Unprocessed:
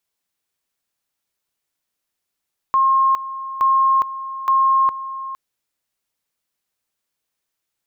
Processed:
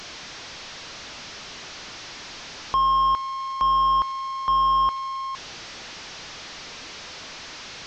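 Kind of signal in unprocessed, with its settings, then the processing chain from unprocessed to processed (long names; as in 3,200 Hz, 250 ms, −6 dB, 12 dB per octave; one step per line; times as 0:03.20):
tone at two levels in turn 1,070 Hz −12 dBFS, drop 14 dB, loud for 0.41 s, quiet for 0.46 s, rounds 3
linear delta modulator 32 kbit/s, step −32 dBFS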